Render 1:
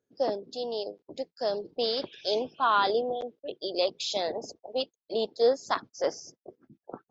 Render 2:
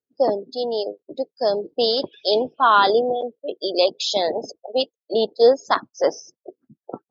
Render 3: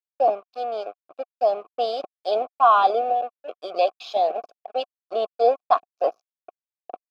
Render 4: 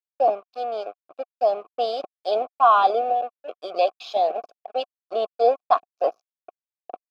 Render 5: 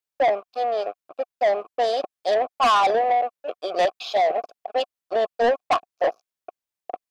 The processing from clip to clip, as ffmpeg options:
-af "afftdn=nr=21:nf=-40,volume=2.82"
-filter_complex "[0:a]aeval=exprs='sgn(val(0))*max(abs(val(0))-0.0224,0)':c=same,asplit=3[s0][s1][s2];[s0]bandpass=f=730:t=q:w=8,volume=1[s3];[s1]bandpass=f=1090:t=q:w=8,volume=0.501[s4];[s2]bandpass=f=2440:t=q:w=8,volume=0.355[s5];[s3][s4][s5]amix=inputs=3:normalize=0,volume=2.66"
-af anull
-af "asoftclip=type=tanh:threshold=0.0944,volume=1.88"

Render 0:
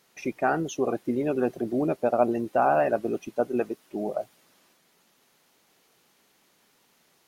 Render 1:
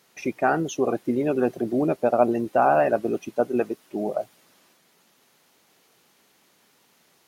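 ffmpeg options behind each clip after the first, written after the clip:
-af "highpass=46,volume=1.41"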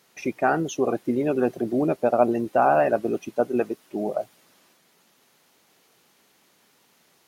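-af anull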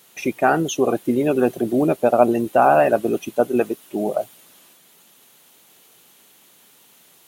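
-af "aexciter=amount=1.5:drive=5.4:freq=2800,volume=1.68"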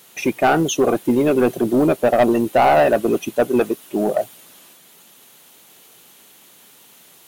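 -filter_complex "[0:a]asplit=2[s0][s1];[s1]acrusher=bits=5:mode=log:mix=0:aa=0.000001,volume=0.631[s2];[s0][s2]amix=inputs=2:normalize=0,asoftclip=type=tanh:threshold=0.398"

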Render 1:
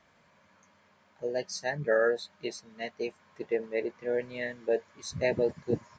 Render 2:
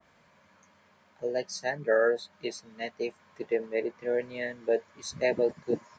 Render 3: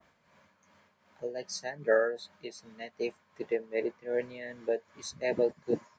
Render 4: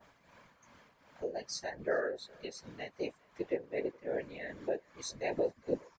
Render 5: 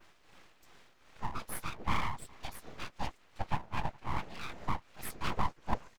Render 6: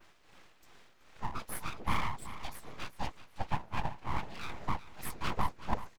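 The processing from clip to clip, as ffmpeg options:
-filter_complex "[0:a]acrossover=split=190|1300[s0][s1][s2];[s0]acompressor=threshold=0.002:ratio=6[s3];[s3][s1][s2]amix=inputs=3:normalize=0,adynamicequalizer=threshold=0.00631:dfrequency=1800:dqfactor=0.7:tfrequency=1800:tqfactor=0.7:attack=5:release=100:ratio=0.375:range=2:mode=cutabove:tftype=highshelf,volume=1.19"
-af "tremolo=f=2.6:d=0.65"
-filter_complex "[0:a]acompressor=threshold=0.00398:ratio=1.5,afftfilt=real='hypot(re,im)*cos(2*PI*random(0))':imag='hypot(re,im)*sin(2*PI*random(1))':win_size=512:overlap=0.75,asplit=2[s0][s1];[s1]adelay=414,volume=0.0501,highshelf=f=4000:g=-9.32[s2];[s0][s2]amix=inputs=2:normalize=0,volume=2.82"
-af "aeval=exprs='abs(val(0))':c=same,volume=1.5"
-af "aecho=1:1:378|756|1134:0.2|0.0599|0.018"

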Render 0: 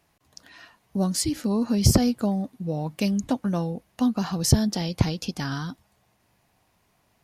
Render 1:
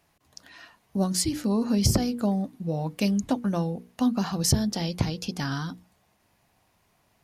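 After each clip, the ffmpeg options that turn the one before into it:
-af "alimiter=limit=0.335:level=0:latency=1:release=344,bandreject=f=60:t=h:w=6,bandreject=f=120:t=h:w=6,bandreject=f=180:t=h:w=6,bandreject=f=240:t=h:w=6,bandreject=f=300:t=h:w=6,bandreject=f=360:t=h:w=6,bandreject=f=420:t=h:w=6,bandreject=f=480:t=h:w=6"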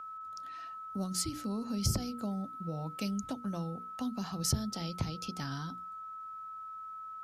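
-filter_complex "[0:a]aeval=exprs='val(0)+0.02*sin(2*PI*1300*n/s)':c=same,acrossover=split=170|3000[s0][s1][s2];[s1]acompressor=threshold=0.0251:ratio=2.5[s3];[s0][s3][s2]amix=inputs=3:normalize=0,volume=0.422"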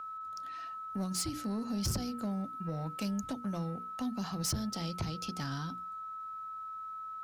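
-af "asoftclip=type=tanh:threshold=0.0316,volume=1.26"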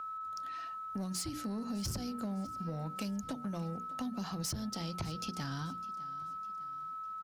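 -af "acompressor=threshold=0.0158:ratio=6,aecho=1:1:605|1210|1815:0.112|0.0494|0.0217,volume=1.12"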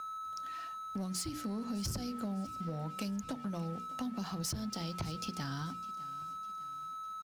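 -af "aeval=exprs='sgn(val(0))*max(abs(val(0))-0.00158,0)':c=same,volume=1.12"

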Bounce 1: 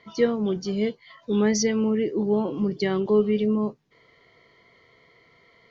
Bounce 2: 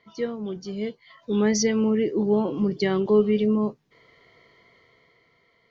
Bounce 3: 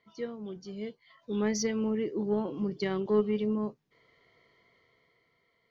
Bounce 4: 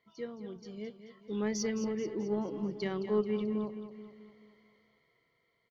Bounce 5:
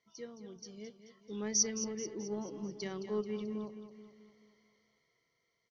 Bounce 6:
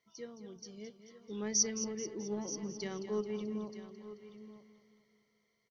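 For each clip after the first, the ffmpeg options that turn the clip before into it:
-af "dynaudnorm=f=260:g=9:m=3.76,volume=0.447"
-af "aeval=exprs='0.376*(cos(1*acos(clip(val(0)/0.376,-1,1)))-cos(1*PI/2))+0.0335*(cos(3*acos(clip(val(0)/0.376,-1,1)))-cos(3*PI/2))':c=same,volume=0.501"
-af "aecho=1:1:217|434|651|868|1085|1302:0.282|0.147|0.0762|0.0396|0.0206|0.0107,volume=0.631"
-af "lowpass=f=5900:t=q:w=8.7,volume=0.501"
-af "aecho=1:1:928:0.211"

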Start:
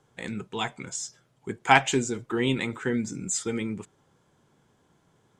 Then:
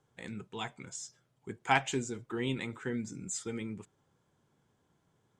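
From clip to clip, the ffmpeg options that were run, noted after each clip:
-af "equalizer=f=93:w=0.98:g=3,volume=0.355"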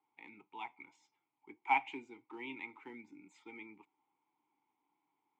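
-filter_complex "[0:a]acrossover=split=560 3800:gain=0.112 1 0.178[s0][s1][s2];[s0][s1][s2]amix=inputs=3:normalize=0,acrusher=bits=5:mode=log:mix=0:aa=0.000001,asplit=3[s3][s4][s5];[s3]bandpass=f=300:t=q:w=8,volume=1[s6];[s4]bandpass=f=870:t=q:w=8,volume=0.501[s7];[s5]bandpass=f=2240:t=q:w=8,volume=0.355[s8];[s6][s7][s8]amix=inputs=3:normalize=0,volume=3.35"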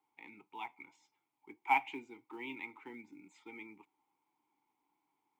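-af "acrusher=bits=9:mode=log:mix=0:aa=0.000001,volume=1.12"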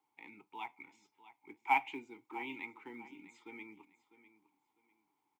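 -af "aecho=1:1:650|1300:0.158|0.0396"

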